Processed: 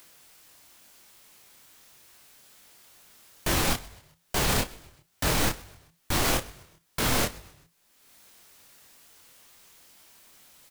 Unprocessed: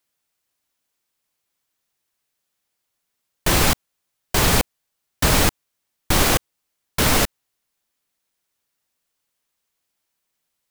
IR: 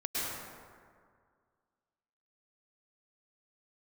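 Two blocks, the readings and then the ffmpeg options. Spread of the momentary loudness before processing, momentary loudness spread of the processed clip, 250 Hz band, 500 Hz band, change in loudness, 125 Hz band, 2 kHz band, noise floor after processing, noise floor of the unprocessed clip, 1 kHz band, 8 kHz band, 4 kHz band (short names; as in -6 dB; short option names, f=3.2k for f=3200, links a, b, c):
9 LU, 10 LU, -7.5 dB, -7.5 dB, -8.0 dB, -8.0 dB, -7.5 dB, -69 dBFS, -78 dBFS, -7.0 dB, -7.5 dB, -7.5 dB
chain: -filter_complex "[0:a]asplit=2[a][b];[b]acompressor=mode=upward:threshold=-23dB:ratio=2.5,volume=-2.5dB[c];[a][c]amix=inputs=2:normalize=0,alimiter=limit=-9dB:level=0:latency=1,asplit=2[d][e];[e]adelay=34,volume=-13dB[f];[d][f]amix=inputs=2:normalize=0,asplit=4[g][h][i][j];[h]adelay=128,afreqshift=-55,volume=-21dB[k];[i]adelay=256,afreqshift=-110,volume=-27.4dB[l];[j]adelay=384,afreqshift=-165,volume=-33.8dB[m];[g][k][l][m]amix=inputs=4:normalize=0,flanger=delay=20:depth=6.8:speed=2.3,volume=-3dB"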